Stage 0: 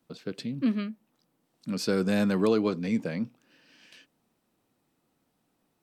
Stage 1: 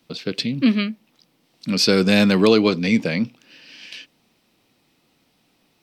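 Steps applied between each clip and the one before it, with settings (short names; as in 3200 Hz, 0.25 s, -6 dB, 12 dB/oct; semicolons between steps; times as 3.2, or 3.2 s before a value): band shelf 3400 Hz +8.5 dB; gain +9 dB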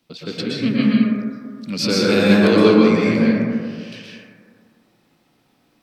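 plate-style reverb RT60 2 s, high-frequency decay 0.25×, pre-delay 0.105 s, DRR -7 dB; gain -5 dB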